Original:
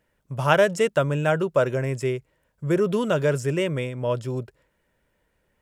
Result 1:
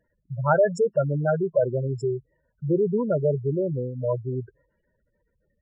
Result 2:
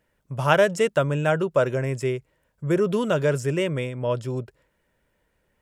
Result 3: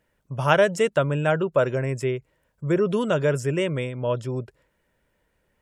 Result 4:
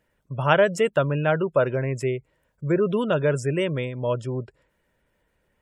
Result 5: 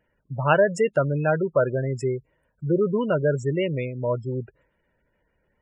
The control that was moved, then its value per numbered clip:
spectral gate, under each frame's peak: -10 dB, -60 dB, -45 dB, -35 dB, -20 dB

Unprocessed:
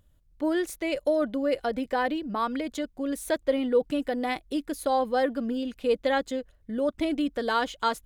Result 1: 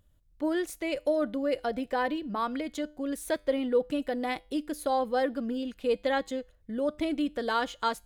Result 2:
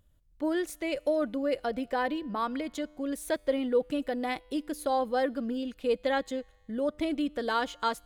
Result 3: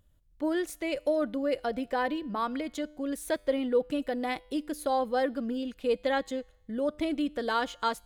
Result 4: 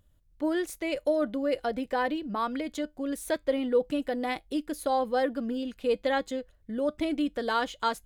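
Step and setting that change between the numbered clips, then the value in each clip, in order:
feedback comb, decay: 0.39 s, 1.9 s, 0.87 s, 0.16 s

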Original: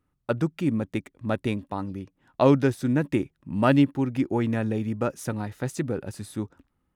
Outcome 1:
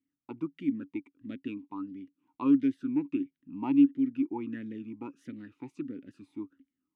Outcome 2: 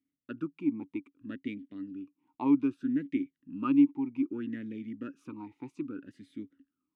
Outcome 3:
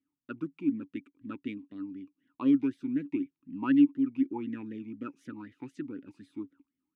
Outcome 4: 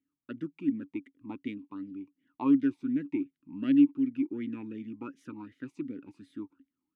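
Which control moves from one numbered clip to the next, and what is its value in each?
talking filter, rate: 1.5 Hz, 0.63 Hz, 4 Hz, 2.7 Hz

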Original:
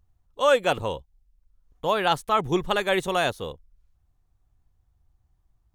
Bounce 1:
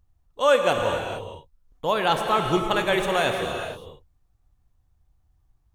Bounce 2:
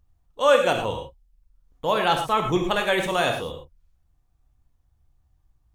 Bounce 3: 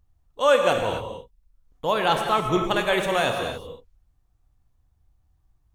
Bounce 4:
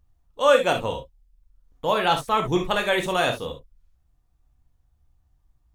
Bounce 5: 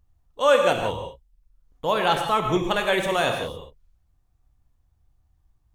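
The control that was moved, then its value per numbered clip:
gated-style reverb, gate: 490 ms, 140 ms, 300 ms, 90 ms, 200 ms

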